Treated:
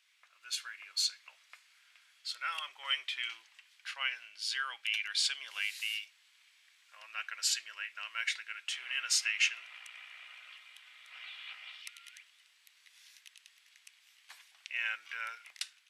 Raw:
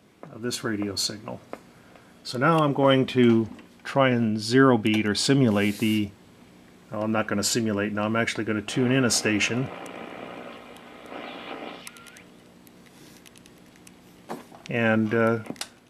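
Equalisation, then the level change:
four-pole ladder high-pass 1,700 Hz, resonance 20%
high-shelf EQ 9,900 Hz −10 dB
+1.5 dB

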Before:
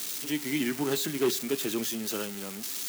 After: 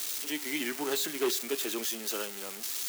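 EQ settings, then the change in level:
high-pass filter 400 Hz 12 dB per octave
0.0 dB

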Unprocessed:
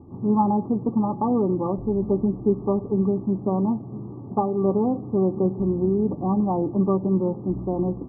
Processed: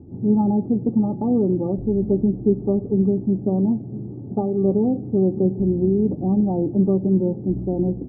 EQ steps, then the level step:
moving average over 41 samples
+4.0 dB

